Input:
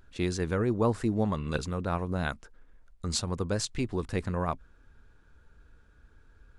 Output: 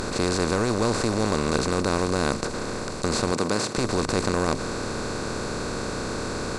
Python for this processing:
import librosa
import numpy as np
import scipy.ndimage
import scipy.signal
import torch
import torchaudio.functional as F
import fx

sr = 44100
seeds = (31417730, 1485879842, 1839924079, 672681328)

y = fx.bin_compress(x, sr, power=0.2)
y = fx.highpass(y, sr, hz=130.0, slope=12, at=(3.32, 3.78))
y = y * librosa.db_to_amplitude(-2.0)